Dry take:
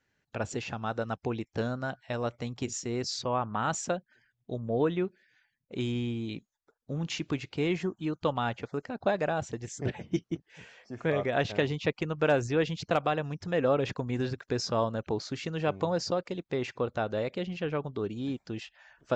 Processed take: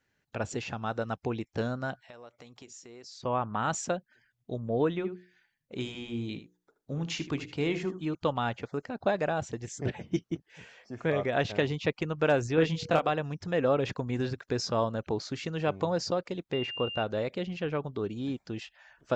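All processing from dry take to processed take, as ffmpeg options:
-filter_complex "[0:a]asettb=1/sr,asplit=3[s0][s1][s2];[s0]atrim=end=2.024[s3];[s1]atrim=start=2.02:end=3.23,asetpts=PTS-STARTPTS,afade=t=in:d=0.004:c=qsin,afade=t=out:st=1.206:d=0.004:c=qsin,bass=f=250:g=-12,treble=f=4000:g=1,acompressor=threshold=0.00316:ratio=3:attack=3.2:release=140:knee=1:detection=peak[s4];[s2]atrim=start=3.226[s5];[s3][s4]acrossfade=d=0.004:c1=hsin:c2=qsin[s6];[s6][s5]acrossfade=d=0.004:c1=qsin:c2=hsin,asettb=1/sr,asplit=3[s7][s8][s9];[s7]atrim=end=4.914[s10];[s8]atrim=start=4.91:end=8.15,asetpts=PTS-STARTPTS,afade=t=in:d=0.004:c=qsin,afade=t=out:st=3.236:d=0.004:c=qsin,bandreject=f=60:t=h:w=6,bandreject=f=120:t=h:w=6,bandreject=f=180:t=h:w=6,bandreject=f=240:t=h:w=6,bandreject=f=300:t=h:w=6,bandreject=f=360:t=h:w=6,bandreject=f=420:t=h:w=6,bandreject=f=480:t=h:w=6,aecho=1:1:77:0.237,atrim=end_sample=142884[s11];[s9]atrim=start=8.146[s12];[s10][s11]acrossfade=d=0.004:c1=hsin:c2=qsin[s13];[s13][s12]acrossfade=d=0.004:c1=qsin:c2=hsin,asettb=1/sr,asplit=3[s14][s15][s16];[s14]atrim=end=12.554[s17];[s15]atrim=start=12.55:end=13.09,asetpts=PTS-STARTPTS,afade=t=in:d=0.004:c=qsin,afade=t=out:st=0.536:d=0.004:c=qsin,aeval=exprs='val(0)+0.00316*sin(2*PI*480*n/s)':c=same,asplit=2[s18][s19];[s19]adelay=25,volume=0.668[s20];[s18][s20]amix=inputs=2:normalize=0,atrim=end_sample=23814[s21];[s16]atrim=start=13.086[s22];[s17][s21]acrossfade=d=0.004:c1=hsin:c2=qsin[s23];[s23][s22]acrossfade=d=0.004:c1=qsin:c2=hsin,asettb=1/sr,asplit=3[s24][s25][s26];[s24]atrim=end=16.534[s27];[s25]atrim=start=16.53:end=17.03,asetpts=PTS-STARTPTS,afade=t=in:d=0.004:c=qsin,afade=t=out:st=0.496:d=0.004:c=qsin,adynamicsmooth=sensitivity=1:basefreq=4100,aeval=exprs='val(0)+0.0158*sin(2*PI*2800*n/s)':c=same[s28];[s26]atrim=start=17.026[s29];[s27][s28]acrossfade=d=0.004:c1=hsin:c2=qsin[s30];[s30][s29]acrossfade=d=0.004:c1=qsin:c2=hsin"

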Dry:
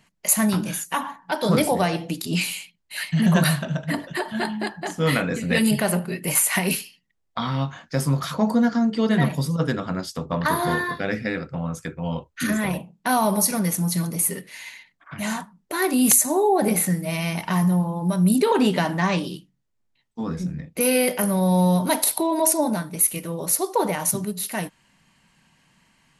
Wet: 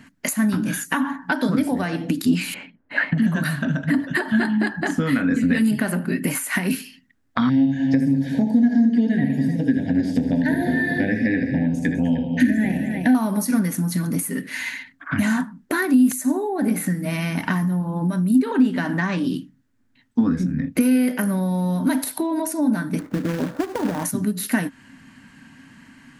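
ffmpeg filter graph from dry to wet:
-filter_complex "[0:a]asettb=1/sr,asplit=3[s0][s1][s2];[s0]atrim=end=2.544[s3];[s1]atrim=start=2.54:end=3.18,asetpts=PTS-STARTPTS,afade=t=in:d=0.004:c=qsin,afade=t=out:st=0.636:d=0.004:c=qsin,lowpass=1700,equalizer=f=540:w=0.85:g=12.5[s4];[s2]atrim=start=3.176[s5];[s3][s4]acrossfade=d=0.004:c1=hsin:c2=qsin[s6];[s6][s5]acrossfade=d=0.004:c1=qsin:c2=hsin,asettb=1/sr,asplit=3[s7][s8][s9];[s7]atrim=end=7.494[s10];[s8]atrim=start=7.49:end=13.15,asetpts=PTS-STARTPTS,afade=t=in:d=0.004:c=qsin,afade=t=out:st=5.656:d=0.004:c=qsin,acrossover=split=2600[s11][s12];[s12]acompressor=threshold=0.00891:ratio=4:attack=1:release=60[s13];[s11][s13]amix=inputs=2:normalize=0,asuperstop=centerf=1200:order=8:qfactor=1.5,aecho=1:1:63|78|203|304:0.282|0.376|0.2|0.237,atrim=end_sample=249606[s14];[s9]atrim=start=13.146[s15];[s10][s14]acrossfade=d=0.004:c1=hsin:c2=qsin[s16];[s16][s15]acrossfade=d=0.004:c1=qsin:c2=hsin,asettb=1/sr,asplit=3[s17][s18][s19];[s17]atrim=end=22.994[s20];[s18]atrim=start=22.99:end=24.03,asetpts=PTS-STARTPTS,afade=t=in:d=0.004:c=qsin,afade=t=out:st=1.036:d=0.004:c=qsin,lowpass=f=1100:w=0.5412,lowpass=f=1100:w=1.3066,acompressor=threshold=0.0708:ratio=5:attack=3.2:release=140:knee=1:detection=peak,acrusher=bits=2:mode=log:mix=0:aa=0.000001[s21];[s19]atrim=start=24.026[s22];[s20][s21]acrossfade=d=0.004:c1=hsin:c2=qsin[s23];[s23][s22]acrossfade=d=0.004:c1=qsin:c2=hsin,equalizer=f=270:t=o:w=0.26:g=10.5,acompressor=threshold=0.0316:ratio=16,equalizer=f=100:t=o:w=0.67:g=10,equalizer=f=250:t=o:w=0.67:g=12,equalizer=f=1600:t=o:w=0.67:g=11,volume=1.88"

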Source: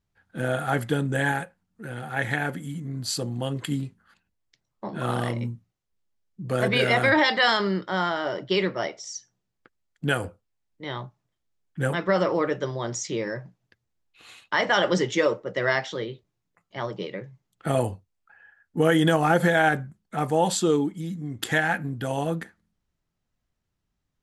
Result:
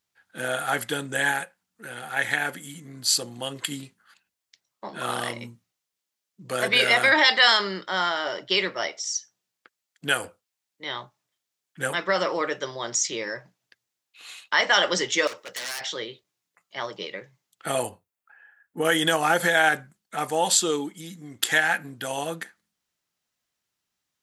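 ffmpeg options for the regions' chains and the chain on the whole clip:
-filter_complex "[0:a]asettb=1/sr,asplit=3[s0][s1][s2];[s0]atrim=end=15.274[s3];[s1]atrim=start=15.27:end=15.81,asetpts=PTS-STARTPTS,afade=t=in:d=0.004:c=qsin,afade=t=out:st=0.536:d=0.004:c=qsin,tiltshelf=f=1100:g=-7,acompressor=threshold=0.0501:ratio=8:attack=3.2:release=140:knee=1:detection=peak,aeval=exprs='0.0266*(abs(mod(val(0)/0.0266+3,4)-2)-1)':c=same[s4];[s2]atrim=start=15.806[s5];[s3][s4]acrossfade=d=0.004:c1=hsin:c2=qsin[s6];[s6][s5]acrossfade=d=0.004:c1=qsin:c2=hsin,asettb=1/sr,asplit=3[s7][s8][s9];[s7]atrim=end=17.894[s10];[s8]atrim=start=17.89:end=18.85,asetpts=PTS-STARTPTS,afade=t=in:d=0.004:c=qsin,afade=t=out:st=0.956:d=0.004:c=qsin,equalizer=f=5200:w=0.7:g=-11,asplit=2[s11][s12];[s12]adelay=35,volume=0.224[s13];[s11][s13]amix=inputs=2:normalize=0,atrim=end_sample=42336[s14];[s9]atrim=start=18.846[s15];[s10][s14]acrossfade=d=0.004:c1=hsin:c2=qsin[s16];[s16][s15]acrossfade=d=0.004:c1=qsin:c2=hsin,highpass=f=560:p=1,highshelf=f=2100:g=9"

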